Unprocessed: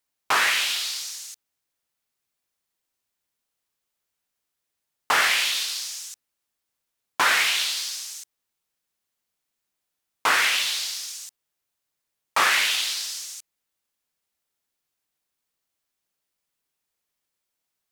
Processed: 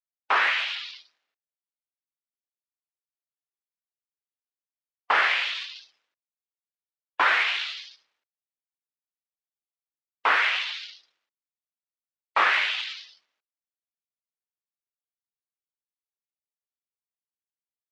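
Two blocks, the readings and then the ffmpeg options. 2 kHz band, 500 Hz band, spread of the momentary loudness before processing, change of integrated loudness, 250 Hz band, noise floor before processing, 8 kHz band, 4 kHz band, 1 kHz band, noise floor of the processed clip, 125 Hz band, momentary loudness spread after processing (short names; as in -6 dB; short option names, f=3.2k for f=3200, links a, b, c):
-1.0 dB, -1.0 dB, 18 LU, -1.5 dB, -5.0 dB, -82 dBFS, -23.5 dB, -6.0 dB, 0.0 dB, under -85 dBFS, n/a, 17 LU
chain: -filter_complex "[0:a]adynamicsmooth=sensitivity=6.5:basefreq=1.4k,afftdn=nr=22:nf=-36,acrossover=split=280 3500:gain=0.178 1 0.0794[a][b][c];[a][b][c]amix=inputs=3:normalize=0"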